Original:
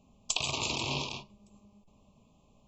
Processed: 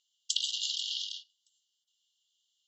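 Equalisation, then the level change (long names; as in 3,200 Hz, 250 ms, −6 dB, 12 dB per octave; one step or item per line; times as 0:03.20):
linear-phase brick-wall high-pass 2,800 Hz
low-pass filter 5,900 Hz 12 dB per octave
+3.5 dB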